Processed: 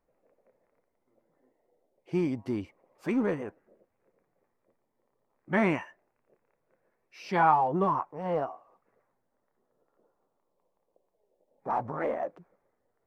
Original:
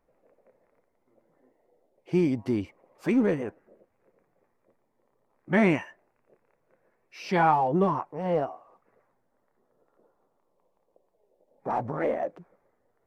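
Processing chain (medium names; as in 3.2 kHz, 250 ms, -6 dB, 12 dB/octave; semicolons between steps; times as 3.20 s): dynamic bell 1.1 kHz, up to +7 dB, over -41 dBFS, Q 1.3; trim -5 dB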